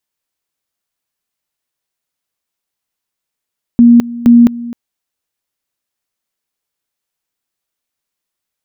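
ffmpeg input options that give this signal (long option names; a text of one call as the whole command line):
ffmpeg -f lavfi -i "aevalsrc='pow(10,(-1.5-18.5*gte(mod(t,0.47),0.21))/20)*sin(2*PI*237*t)':duration=0.94:sample_rate=44100" out.wav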